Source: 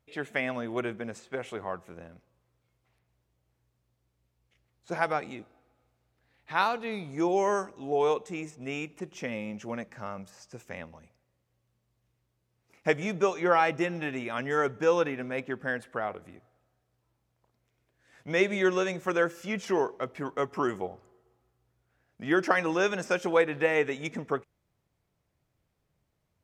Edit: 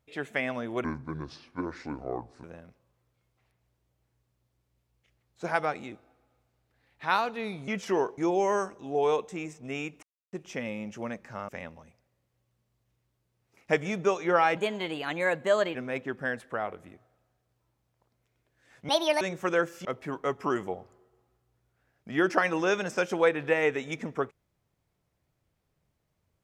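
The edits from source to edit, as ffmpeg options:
-filter_complex "[0:a]asplit=12[a][b][c][d][e][f][g][h][i][j][k][l];[a]atrim=end=0.844[m];[b]atrim=start=0.84:end=1.91,asetpts=PTS-STARTPTS,asetrate=29547,aresample=44100,atrim=end_sample=70428,asetpts=PTS-STARTPTS[n];[c]atrim=start=1.906:end=7.152[o];[d]atrim=start=19.478:end=19.982[p];[e]atrim=start=7.148:end=9,asetpts=PTS-STARTPTS,afade=t=out:st=1.848:d=0.004:c=hsin,apad=pad_dur=0.3[q];[f]atrim=start=9:end=10.162,asetpts=PTS-STARTPTS,afade=t=in:d=0.004:c=hsin[r];[g]atrim=start=10.648:end=13.734[s];[h]atrim=start=13.73:end=15.17,asetpts=PTS-STARTPTS,asetrate=53802,aresample=44100,atrim=end_sample=52052,asetpts=PTS-STARTPTS[t];[i]atrim=start=15.166:end=18.314[u];[j]atrim=start=18.31:end=18.84,asetpts=PTS-STARTPTS,asetrate=72324,aresample=44100[v];[k]atrim=start=18.836:end=19.482[w];[l]atrim=start=19.978[x];[m][n]acrossfade=d=0.004:c1=hsin:c2=hsin[y];[y][o]acrossfade=d=0.004:c1=hsin:c2=hsin[z];[z][p]acrossfade=d=0.004:c1=hsin:c2=hsin[aa];[q][r]concat=n=2:v=0:a=1[ab];[aa][ab]acrossfade=d=0.004:c1=hsin:c2=hsin[ac];[ac][s]acrossfade=d=0.004:c1=hsin:c2=hsin[ad];[ad][t]acrossfade=d=0.004:c1=hsin:c2=hsin[ae];[ae][u]acrossfade=d=0.004:c1=hsin:c2=hsin[af];[af][v]acrossfade=d=0.004:c1=hsin:c2=hsin[ag];[ag][w]acrossfade=d=0.004:c1=hsin:c2=hsin[ah];[ah][x]acrossfade=d=0.004:c1=hsin:c2=hsin"

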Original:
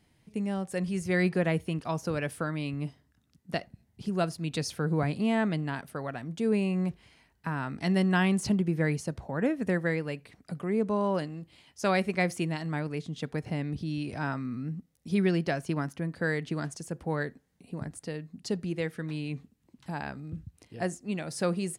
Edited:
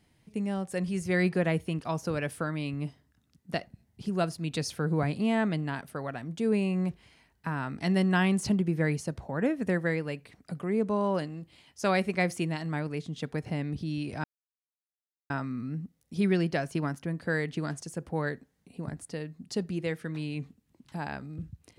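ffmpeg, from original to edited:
-filter_complex "[0:a]asplit=2[a][b];[a]atrim=end=14.24,asetpts=PTS-STARTPTS,afade=t=out:st=14.236:d=0.004:c=hsin,apad=pad_dur=1.06[c];[b]atrim=start=14.24,asetpts=PTS-STARTPTS,afade=t=in:d=0.004:c=hsin[d];[c][d]concat=n=2:v=0:a=1"

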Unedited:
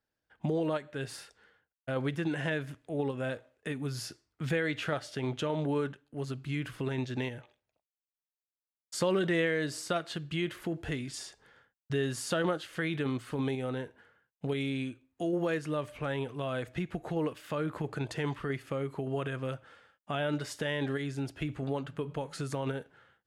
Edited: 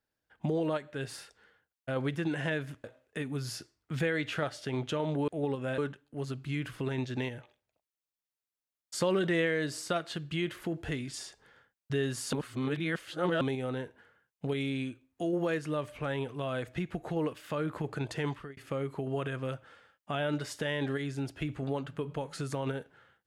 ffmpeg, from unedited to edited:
-filter_complex "[0:a]asplit=7[a][b][c][d][e][f][g];[a]atrim=end=2.842[h];[b]atrim=start=3.338:end=5.782[i];[c]atrim=start=2.838:end=3.342[j];[d]atrim=start=5.778:end=12.332[k];[e]atrim=start=12.328:end=13.412,asetpts=PTS-STARTPTS,areverse[l];[f]atrim=start=13.408:end=18.57,asetpts=PTS-STARTPTS,afade=t=out:st=4.872:d=0.29[m];[g]atrim=start=18.57,asetpts=PTS-STARTPTS,afade=t=in:d=0.004:c=hsin[n];[h][i]acrossfade=d=0.004:c1=hsin:c2=hsin[o];[o][j]acrossfade=d=0.004:c1=hsin:c2=hsin[p];[p][k]acrossfade=d=0.004:c1=hsin:c2=hsin[q];[q][l]acrossfade=d=0.004:c1=hsin:c2=hsin[r];[m][n]concat=n=2:v=0:a=1[s];[r][s]acrossfade=d=0.004:c1=hsin:c2=hsin"

